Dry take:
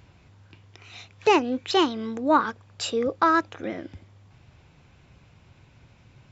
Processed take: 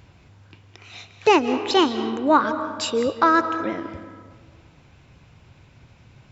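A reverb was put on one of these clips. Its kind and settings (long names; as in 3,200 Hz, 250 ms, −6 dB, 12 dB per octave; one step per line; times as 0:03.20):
comb and all-pass reverb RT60 1.7 s, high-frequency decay 0.5×, pre-delay 120 ms, DRR 10 dB
level +3 dB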